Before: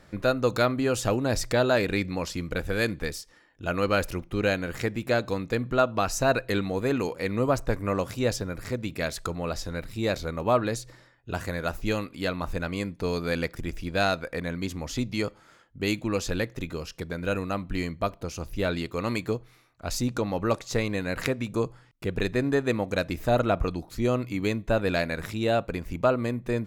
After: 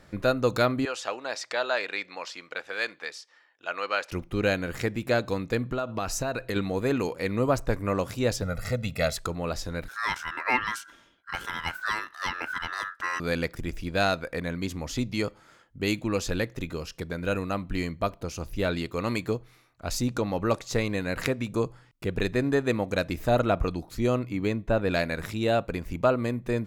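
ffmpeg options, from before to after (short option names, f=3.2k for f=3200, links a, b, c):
-filter_complex "[0:a]asettb=1/sr,asplit=3[a][b][c];[a]atrim=end=0.854[d];[b]atrim=start=0.85:end=4.12,asetpts=PTS-STARTPTS,afade=t=in:d=0.004:c=qsin,afade=t=out:st=3.266:d=0.004:c=qsin,highpass=770,lowpass=5.1k[e];[c]atrim=start=4.116[f];[d][e]acrossfade=d=0.004:c1=hsin:c2=qsin[g];[g][f]acrossfade=d=0.004:c1=qsin:c2=hsin,asettb=1/sr,asplit=3[h][i][j];[h]atrim=end=5.724[k];[i]atrim=start=5.72:end=6.56,asetpts=PTS-STARTPTS,afade=t=in:d=0.004:c=qsin,afade=t=out:st=0.836:d=0.004:c=qsin,acompressor=threshold=-25dB:ratio=6:attack=3.2:release=140:knee=1:detection=peak[l];[j]atrim=start=6.556[m];[k][l]acrossfade=d=0.004:c1=hsin:c2=qsin[n];[n][m]acrossfade=d=0.004:c1=qsin:c2=hsin,asettb=1/sr,asplit=3[o][p][q];[o]atrim=end=8.424[r];[p]atrim=start=8.42:end=9.17,asetpts=PTS-STARTPTS,afade=t=in:d=0.004:c=qsin,afade=t=out:st=0.746:d=0.004:c=qsin,aecho=1:1:1.5:0.98,atrim=end_sample=33075[s];[q]atrim=start=9.166[t];[r][s]acrossfade=d=0.004:c1=hsin:c2=qsin[u];[u][t]acrossfade=d=0.004:c1=qsin:c2=hsin,asettb=1/sr,asplit=3[v][w][x];[v]atrim=end=9.884[y];[w]atrim=start=9.88:end=13.2,asetpts=PTS-STARTPTS,afade=t=in:d=0.004:c=qsin,afade=t=out:st=3.316:d=0.004:c=qsin,aeval=exprs='val(0)*sin(2*PI*1500*n/s)':c=same[z];[x]atrim=start=13.196[aa];[y][z]acrossfade=d=0.004:c1=hsin:c2=qsin[ab];[ab][aa]acrossfade=d=0.004:c1=qsin:c2=hsin,asettb=1/sr,asplit=3[ac][ad][ae];[ac]atrim=end=24.194[af];[ad]atrim=start=24.19:end=24.91,asetpts=PTS-STARTPTS,afade=t=in:d=0.004:c=qsin,afade=t=out:st=0.716:d=0.004:c=qsin,highshelf=f=2.9k:g=-8[ag];[ae]atrim=start=24.906[ah];[af][ag]acrossfade=d=0.004:c1=hsin:c2=qsin[ai];[ai][ah]acrossfade=d=0.004:c1=qsin:c2=hsin"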